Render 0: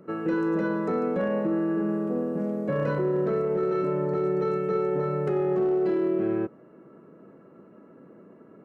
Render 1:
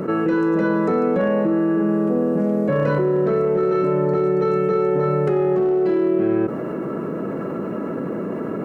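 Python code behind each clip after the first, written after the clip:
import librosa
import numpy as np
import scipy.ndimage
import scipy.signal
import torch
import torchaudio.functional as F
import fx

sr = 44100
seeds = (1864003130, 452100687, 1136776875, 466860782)

y = fx.env_flatten(x, sr, amount_pct=70)
y = F.gain(torch.from_numpy(y), 5.0).numpy()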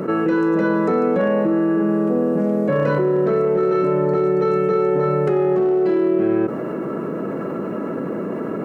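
y = fx.low_shelf(x, sr, hz=95.0, db=-7.5)
y = F.gain(torch.from_numpy(y), 1.5).numpy()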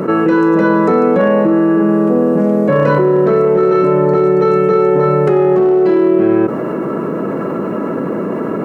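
y = fx.peak_eq(x, sr, hz=1000.0, db=3.5, octaves=0.36)
y = F.gain(torch.from_numpy(y), 6.5).numpy()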